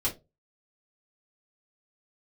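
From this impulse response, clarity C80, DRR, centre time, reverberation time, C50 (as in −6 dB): 22.0 dB, −5.5 dB, 15 ms, 0.25 s, 13.5 dB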